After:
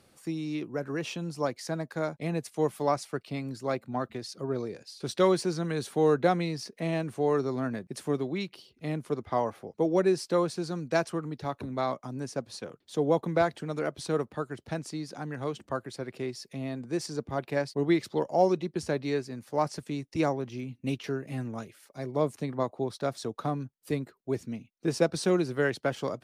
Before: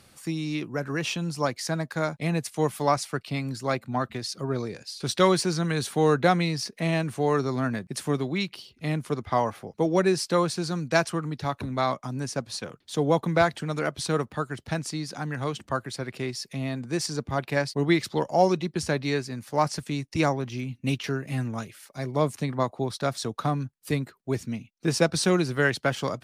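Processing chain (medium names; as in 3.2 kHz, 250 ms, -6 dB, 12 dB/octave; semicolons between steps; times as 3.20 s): peaking EQ 420 Hz +7.5 dB 2 oct; trim -8.5 dB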